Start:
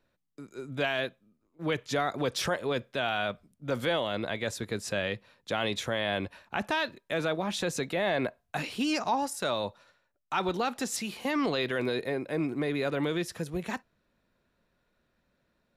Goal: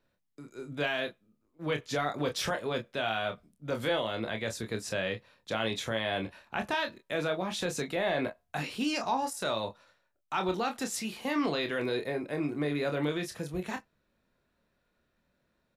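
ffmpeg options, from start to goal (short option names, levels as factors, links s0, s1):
-af "aecho=1:1:27|41:0.473|0.158,volume=0.75"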